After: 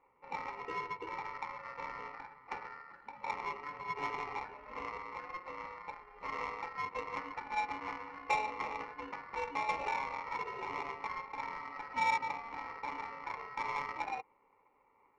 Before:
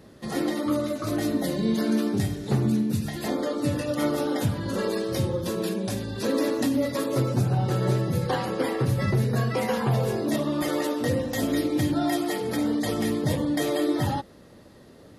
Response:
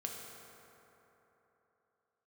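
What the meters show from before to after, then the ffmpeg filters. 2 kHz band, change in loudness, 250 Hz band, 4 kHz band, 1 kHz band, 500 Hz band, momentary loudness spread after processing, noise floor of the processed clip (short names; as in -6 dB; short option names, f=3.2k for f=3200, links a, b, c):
-4.5 dB, -13.5 dB, -30.0 dB, -16.5 dB, -2.0 dB, -20.0 dB, 10 LU, -70 dBFS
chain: -filter_complex "[0:a]asplit=3[a][b][c];[a]bandpass=f=730:t=q:w=8,volume=0dB[d];[b]bandpass=f=1.09k:t=q:w=8,volume=-6dB[e];[c]bandpass=f=2.44k:t=q:w=8,volume=-9dB[f];[d][e][f]amix=inputs=3:normalize=0,aeval=exprs='val(0)*sin(2*PI*1600*n/s)':c=same,adynamicsmooth=sensitivity=3.5:basefreq=860,volume=7dB"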